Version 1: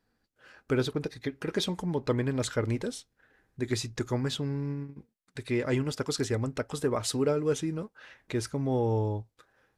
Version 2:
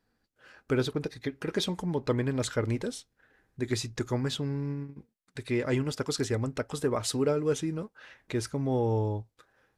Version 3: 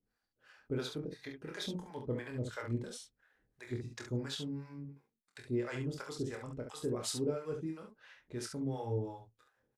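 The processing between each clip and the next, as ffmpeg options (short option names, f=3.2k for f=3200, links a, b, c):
-af anull
-filter_complex "[0:a]acrossover=split=580[a][b];[a]aeval=exprs='val(0)*(1-1/2+1/2*cos(2*PI*2.9*n/s))':c=same[c];[b]aeval=exprs='val(0)*(1-1/2-1/2*cos(2*PI*2.9*n/s))':c=same[d];[c][d]amix=inputs=2:normalize=0,aecho=1:1:25|47|69:0.596|0.282|0.501,volume=-7dB"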